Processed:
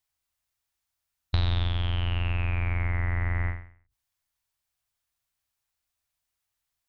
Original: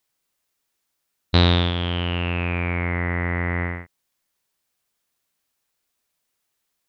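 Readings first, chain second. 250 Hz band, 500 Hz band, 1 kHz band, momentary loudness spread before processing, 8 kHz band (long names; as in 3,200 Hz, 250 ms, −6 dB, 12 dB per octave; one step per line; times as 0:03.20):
−15.5 dB, −15.0 dB, −10.0 dB, 8 LU, can't be measured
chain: sub-octave generator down 2 octaves, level −5 dB
drawn EQ curve 110 Hz 0 dB, 170 Hz −13 dB, 330 Hz −12 dB, 480 Hz −16 dB, 680 Hz −7 dB
downward compressor 5 to 1, threshold −21 dBFS, peak gain reduction 8 dB
every ending faded ahead of time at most 120 dB per second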